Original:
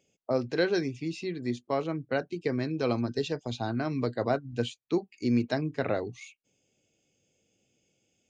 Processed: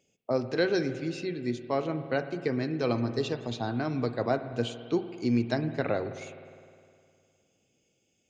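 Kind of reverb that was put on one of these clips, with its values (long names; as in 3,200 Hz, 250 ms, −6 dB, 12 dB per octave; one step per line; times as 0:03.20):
spring reverb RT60 2.3 s, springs 51 ms, chirp 75 ms, DRR 10 dB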